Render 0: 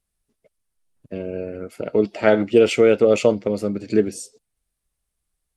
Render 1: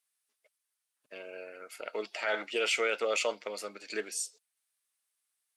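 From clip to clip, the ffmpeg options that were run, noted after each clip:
-af "highpass=1200,alimiter=limit=0.1:level=0:latency=1:release=11"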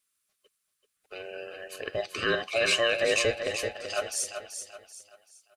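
-filter_complex "[0:a]afftfilt=real='real(if(between(b,1,1008),(2*floor((b-1)/48)+1)*48-b,b),0)':imag='imag(if(between(b,1,1008),(2*floor((b-1)/48)+1)*48-b,b),0)*if(between(b,1,1008),-1,1)':win_size=2048:overlap=0.75,asplit=2[s0][s1];[s1]aecho=0:1:384|768|1152|1536:0.398|0.147|0.0545|0.0202[s2];[s0][s2]amix=inputs=2:normalize=0,volume=1.68"

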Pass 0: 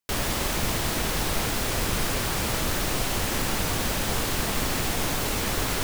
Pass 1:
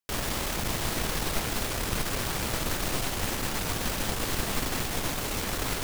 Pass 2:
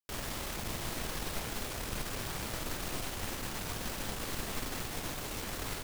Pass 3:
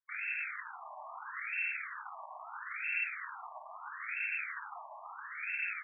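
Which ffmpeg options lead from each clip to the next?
-af "aeval=exprs='(tanh(6.31*val(0)+0.7)-tanh(0.7))/6.31':c=same"
-filter_complex "[0:a]asplit=2[s0][s1];[s1]adelay=49,volume=0.299[s2];[s0][s2]amix=inputs=2:normalize=0,volume=0.376"
-af "lowpass=f=2300:t=q:w=0.5098,lowpass=f=2300:t=q:w=0.6013,lowpass=f=2300:t=q:w=0.9,lowpass=f=2300:t=q:w=2.563,afreqshift=-2700,afftfilt=real='re*between(b*sr/1024,820*pow(2000/820,0.5+0.5*sin(2*PI*0.76*pts/sr))/1.41,820*pow(2000/820,0.5+0.5*sin(2*PI*0.76*pts/sr))*1.41)':imag='im*between(b*sr/1024,820*pow(2000/820,0.5+0.5*sin(2*PI*0.76*pts/sr))/1.41,820*pow(2000/820,0.5+0.5*sin(2*PI*0.76*pts/sr))*1.41)':win_size=1024:overlap=0.75,volume=1.58"

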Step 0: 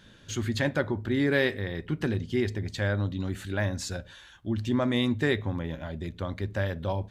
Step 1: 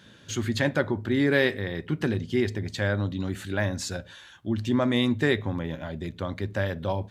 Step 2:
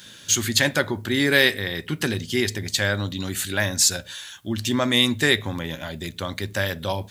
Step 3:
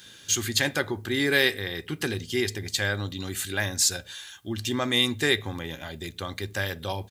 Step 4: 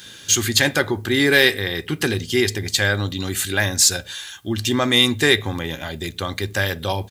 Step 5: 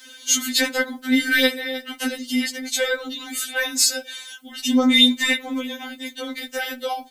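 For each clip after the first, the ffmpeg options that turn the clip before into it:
-af "highpass=92,volume=1.33"
-af "crystalizer=i=7.5:c=0"
-af "aecho=1:1:2.5:0.31,volume=0.596"
-af "asoftclip=type=tanh:threshold=0.335,volume=2.51"
-af "afftfilt=real='re*3.46*eq(mod(b,12),0)':imag='im*3.46*eq(mod(b,12),0)':win_size=2048:overlap=0.75"

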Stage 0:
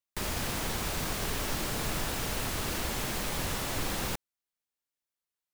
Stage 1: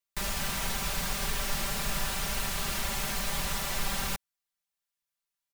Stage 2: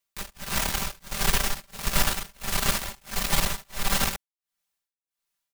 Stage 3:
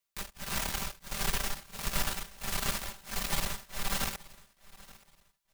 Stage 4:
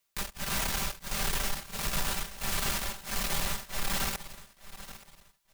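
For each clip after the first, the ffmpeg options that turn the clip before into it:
-af "equalizer=f=330:w=1:g=-10,aecho=1:1:5.1:0.8"
-af "aeval=exprs='0.133*(cos(1*acos(clip(val(0)/0.133,-1,1)))-cos(1*PI/2))+0.0237*(cos(6*acos(clip(val(0)/0.133,-1,1)))-cos(6*PI/2))':c=same,tremolo=f=1.5:d=0.99,volume=2.24"
-af "acompressor=threshold=0.0224:ratio=1.5,aecho=1:1:876|1752:0.0891|0.025,volume=0.75"
-af "asoftclip=type=tanh:threshold=0.0266,volume=2.37"

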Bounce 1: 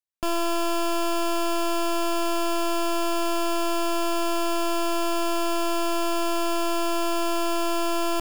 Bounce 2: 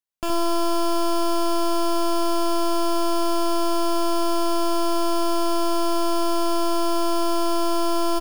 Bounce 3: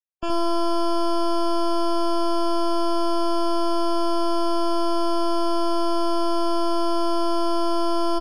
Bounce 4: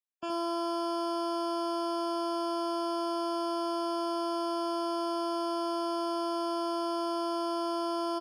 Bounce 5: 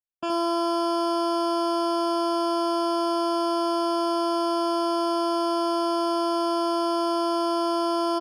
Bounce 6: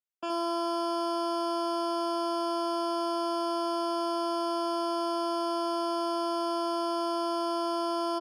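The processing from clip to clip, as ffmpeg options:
-af "aecho=1:1:57|71:0.224|0.562"
-af "afftdn=nr=35:nf=-32"
-af "highpass=210,volume=0.398"
-af "anlmdn=0.00631,volume=2.37"
-af "highpass=280,volume=0.562"

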